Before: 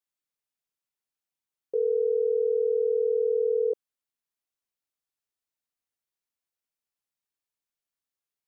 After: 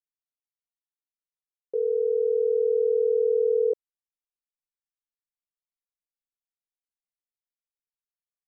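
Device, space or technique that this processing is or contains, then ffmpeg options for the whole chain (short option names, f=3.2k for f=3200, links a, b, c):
voice memo with heavy noise removal: -af "anlmdn=0.0398,dynaudnorm=f=560:g=7:m=5dB,volume=-2.5dB"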